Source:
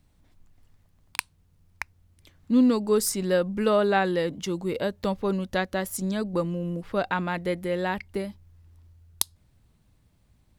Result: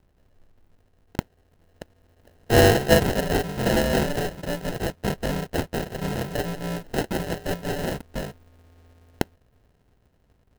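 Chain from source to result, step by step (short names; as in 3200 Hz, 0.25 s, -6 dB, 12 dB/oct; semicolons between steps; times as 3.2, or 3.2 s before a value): FFT order left unsorted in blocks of 128 samples; 1.18–3.25 bell 13000 Hz +6.5 dB 1.8 oct; sample-and-hold 38×; clock jitter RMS 0.024 ms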